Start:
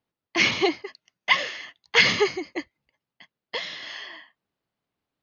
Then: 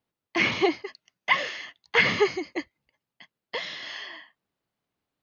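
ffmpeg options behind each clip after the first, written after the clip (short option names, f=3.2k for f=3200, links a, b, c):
-filter_complex "[0:a]acrossover=split=2600[a][b];[b]acompressor=threshold=-35dB:ratio=4:attack=1:release=60[c];[a][c]amix=inputs=2:normalize=0"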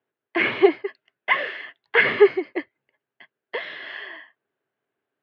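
-af "highpass=f=120:w=0.5412,highpass=f=120:w=1.3066,equalizer=f=180:t=q:w=4:g=-10,equalizer=f=400:t=q:w=4:g=10,equalizer=f=640:t=q:w=4:g=4,equalizer=f=1.6k:t=q:w=4:g=9,lowpass=f=3.2k:w=0.5412,lowpass=f=3.2k:w=1.3066"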